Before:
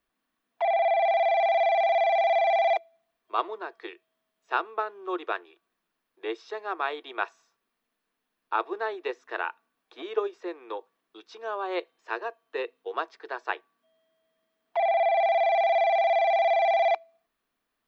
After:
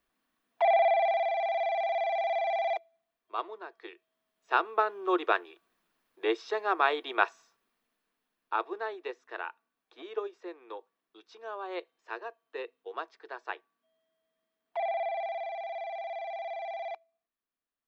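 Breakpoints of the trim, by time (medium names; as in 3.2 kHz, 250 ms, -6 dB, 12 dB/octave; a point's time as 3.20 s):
0.75 s +1 dB
1.33 s -7 dB
3.75 s -7 dB
4.90 s +4 dB
7.23 s +4 dB
9.22 s -7 dB
14.83 s -7 dB
15.57 s -15 dB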